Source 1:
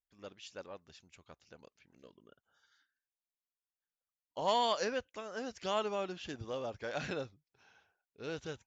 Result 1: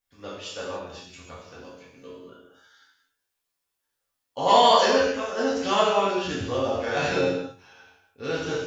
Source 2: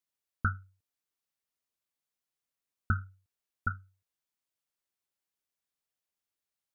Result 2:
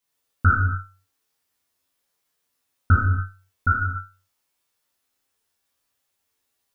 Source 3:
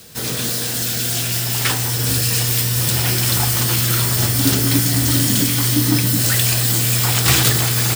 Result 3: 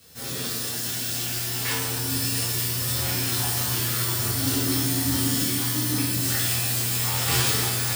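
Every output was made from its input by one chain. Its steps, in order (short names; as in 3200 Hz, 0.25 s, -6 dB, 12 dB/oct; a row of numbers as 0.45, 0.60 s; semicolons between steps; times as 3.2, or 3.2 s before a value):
resonator 90 Hz, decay 0.3 s, harmonics all, mix 80%; non-linear reverb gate 0.32 s falling, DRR -6.5 dB; match loudness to -23 LUFS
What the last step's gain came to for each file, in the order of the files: +14.5, +14.0, -7.0 dB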